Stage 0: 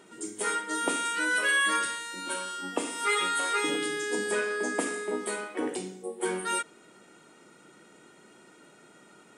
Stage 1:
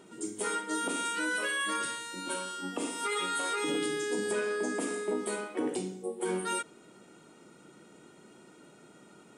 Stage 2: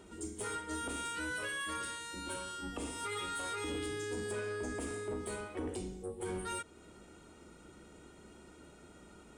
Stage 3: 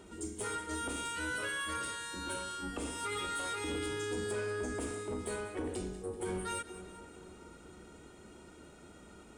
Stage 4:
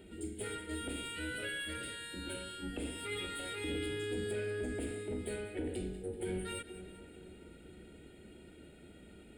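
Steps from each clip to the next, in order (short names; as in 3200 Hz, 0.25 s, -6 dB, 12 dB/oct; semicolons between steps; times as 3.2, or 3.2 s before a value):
low shelf 350 Hz +6.5 dB; limiter -20 dBFS, peak gain reduction 8.5 dB; bell 1800 Hz -4 dB 0.57 oct; gain -2 dB
octaver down 2 oct, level -3 dB; in parallel at +2 dB: compressor, threshold -41 dBFS, peak gain reduction 13.5 dB; on the sum: soft clip -22 dBFS, distortion -20 dB; gain -8.5 dB
split-band echo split 1400 Hz, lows 0.471 s, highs 0.192 s, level -13.5 dB; gain +1.5 dB
fixed phaser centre 2600 Hz, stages 4; gain +1 dB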